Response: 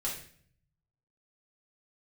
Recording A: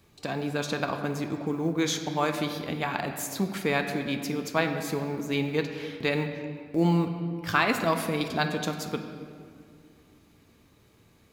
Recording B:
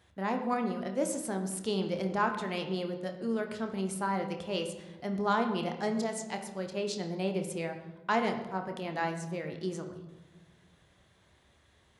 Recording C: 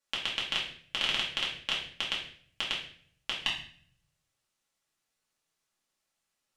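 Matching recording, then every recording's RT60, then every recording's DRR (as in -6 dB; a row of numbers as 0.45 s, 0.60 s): C; 2.3 s, 1.3 s, 0.55 s; 5.0 dB, 4.5 dB, -5.5 dB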